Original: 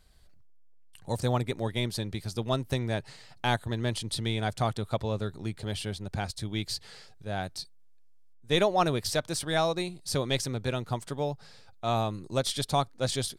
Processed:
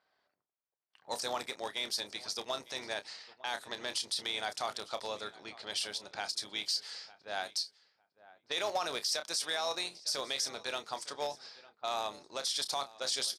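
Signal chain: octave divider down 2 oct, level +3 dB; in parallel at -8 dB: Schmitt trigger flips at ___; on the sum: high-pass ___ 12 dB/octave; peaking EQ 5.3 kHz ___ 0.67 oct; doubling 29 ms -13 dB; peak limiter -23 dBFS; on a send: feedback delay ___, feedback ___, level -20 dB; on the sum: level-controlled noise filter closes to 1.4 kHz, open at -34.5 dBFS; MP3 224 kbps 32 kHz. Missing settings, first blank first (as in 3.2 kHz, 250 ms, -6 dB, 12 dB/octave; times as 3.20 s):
-20.5 dBFS, 730 Hz, +10 dB, 905 ms, 17%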